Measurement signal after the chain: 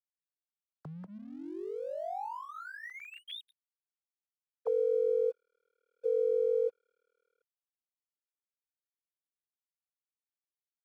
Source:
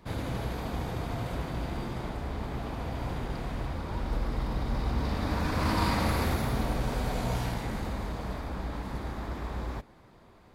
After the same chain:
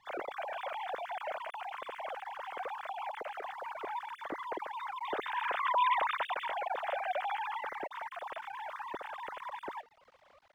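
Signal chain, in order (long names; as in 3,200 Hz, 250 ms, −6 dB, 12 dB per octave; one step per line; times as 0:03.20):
three sine waves on the formant tracks
dead-zone distortion −56.5 dBFS
level −6 dB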